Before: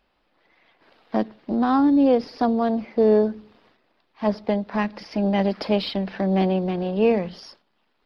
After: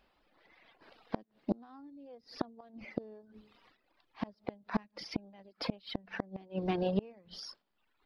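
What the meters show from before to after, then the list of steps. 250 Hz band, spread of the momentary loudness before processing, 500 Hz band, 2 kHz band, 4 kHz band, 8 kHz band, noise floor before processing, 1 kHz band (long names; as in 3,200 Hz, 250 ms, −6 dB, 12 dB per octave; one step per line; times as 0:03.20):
−18.0 dB, 9 LU, −19.5 dB, −12.5 dB, −10.5 dB, can't be measured, −69 dBFS, −18.0 dB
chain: reverb reduction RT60 0.92 s
gate with flip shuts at −17 dBFS, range −31 dB
level −1.5 dB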